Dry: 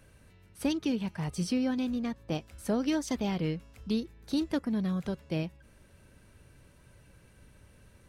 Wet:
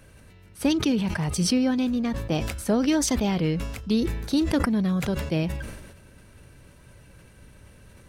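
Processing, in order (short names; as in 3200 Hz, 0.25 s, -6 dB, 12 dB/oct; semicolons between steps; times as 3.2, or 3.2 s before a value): sustainer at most 46 dB/s; gain +6.5 dB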